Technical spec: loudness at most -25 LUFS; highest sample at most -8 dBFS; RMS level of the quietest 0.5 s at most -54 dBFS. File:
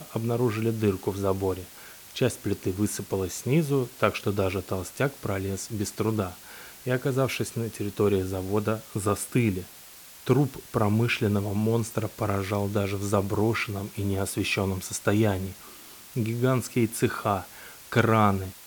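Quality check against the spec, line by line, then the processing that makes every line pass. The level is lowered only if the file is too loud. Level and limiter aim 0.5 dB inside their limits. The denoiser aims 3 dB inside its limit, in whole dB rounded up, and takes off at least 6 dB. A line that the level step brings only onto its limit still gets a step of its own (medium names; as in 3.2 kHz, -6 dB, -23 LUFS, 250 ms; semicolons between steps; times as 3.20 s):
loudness -27.0 LUFS: pass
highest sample -6.0 dBFS: fail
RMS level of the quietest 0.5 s -47 dBFS: fail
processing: noise reduction 10 dB, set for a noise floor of -47 dBFS; peak limiter -8.5 dBFS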